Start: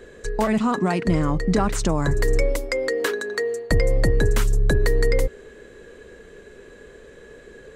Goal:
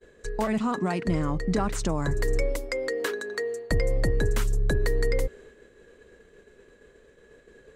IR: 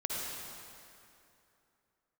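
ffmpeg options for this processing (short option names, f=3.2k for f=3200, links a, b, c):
-af "agate=range=-33dB:threshold=-39dB:ratio=3:detection=peak,volume=-5.5dB"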